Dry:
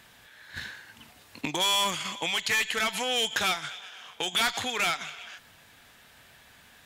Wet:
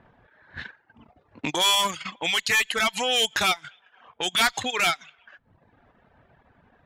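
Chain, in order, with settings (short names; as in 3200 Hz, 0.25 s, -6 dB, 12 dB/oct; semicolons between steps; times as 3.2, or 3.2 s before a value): reverb removal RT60 0.98 s; low-pass opened by the level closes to 810 Hz, open at -26.5 dBFS; transient shaper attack -5 dB, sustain -9 dB; gain +6.5 dB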